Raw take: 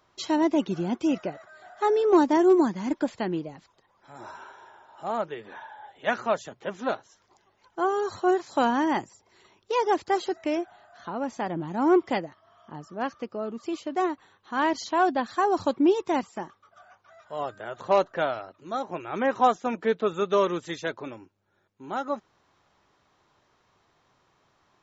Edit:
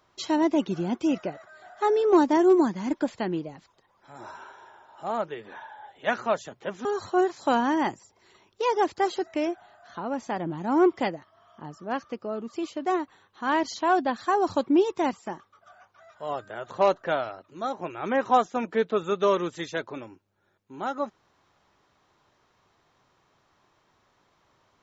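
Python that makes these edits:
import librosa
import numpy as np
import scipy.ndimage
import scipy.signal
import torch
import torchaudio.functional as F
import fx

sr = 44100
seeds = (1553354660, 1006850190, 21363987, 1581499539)

y = fx.edit(x, sr, fx.cut(start_s=6.85, length_s=1.1), tone=tone)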